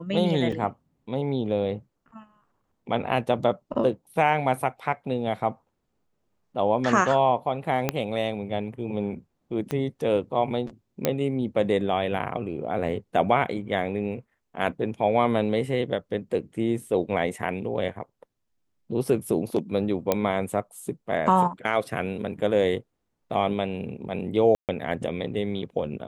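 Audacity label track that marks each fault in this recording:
0.520000	0.520000	dropout 4.5 ms
7.890000	7.890000	pop -8 dBFS
9.710000	9.710000	pop -15 dBFS
11.050000	11.050000	pop -7 dBFS
20.120000	20.120000	pop -8 dBFS
24.550000	24.690000	dropout 138 ms

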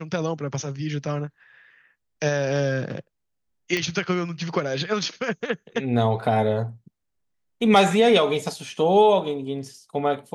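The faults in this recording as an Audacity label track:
3.770000	3.770000	pop -11 dBFS

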